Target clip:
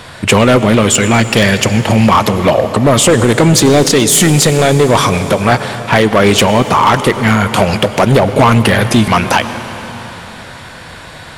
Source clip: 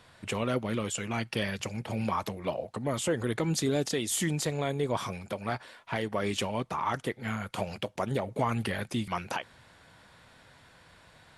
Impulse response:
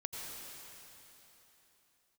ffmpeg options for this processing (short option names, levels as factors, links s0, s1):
-filter_complex "[0:a]volume=22.4,asoftclip=hard,volume=0.0447,asplit=2[s0][s1];[1:a]atrim=start_sample=2205,asetrate=41013,aresample=44100[s2];[s1][s2]afir=irnorm=-1:irlink=0,volume=0.376[s3];[s0][s3]amix=inputs=2:normalize=0,alimiter=level_in=15.8:limit=0.891:release=50:level=0:latency=1,volume=0.891"